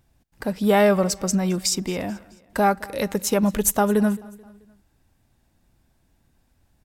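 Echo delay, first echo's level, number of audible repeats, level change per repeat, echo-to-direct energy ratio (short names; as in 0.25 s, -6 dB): 0.217 s, -22.5 dB, 2, -6.5 dB, -21.5 dB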